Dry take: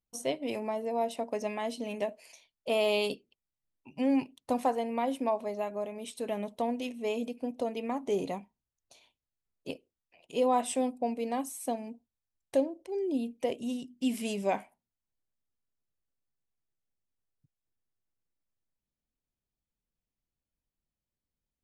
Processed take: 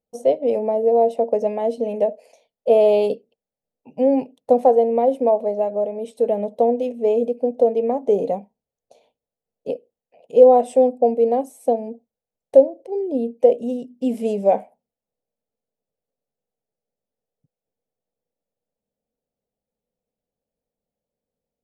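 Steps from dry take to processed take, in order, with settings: band shelf 620 Hz +11 dB 1.1 oct; small resonant body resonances 220/440 Hz, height 14 dB, ringing for 20 ms; gain -5.5 dB

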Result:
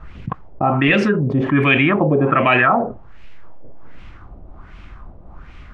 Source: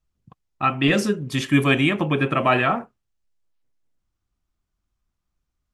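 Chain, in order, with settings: LFO low-pass sine 1.3 Hz 570–2600 Hz; fast leveller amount 70%; gain -1 dB

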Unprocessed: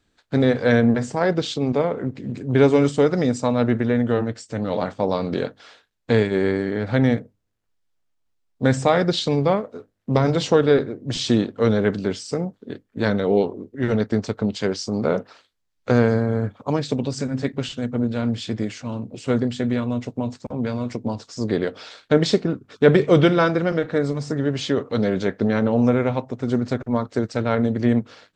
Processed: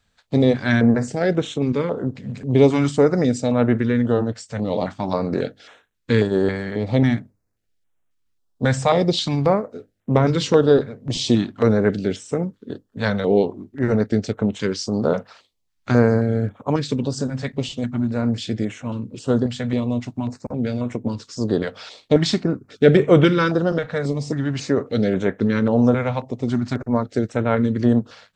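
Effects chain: stepped notch 3.7 Hz 330–4700 Hz; gain +2 dB

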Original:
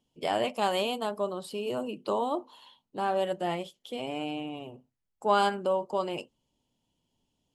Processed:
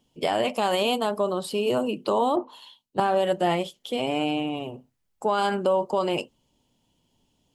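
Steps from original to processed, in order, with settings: limiter -22.5 dBFS, peak gain reduction 10.5 dB; 2.36–3 three-band expander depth 100%; gain +8.5 dB

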